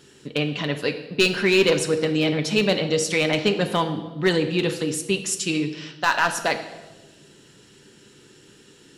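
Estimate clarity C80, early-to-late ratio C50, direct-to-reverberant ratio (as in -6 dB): 12.5 dB, 10.5 dB, 5.5 dB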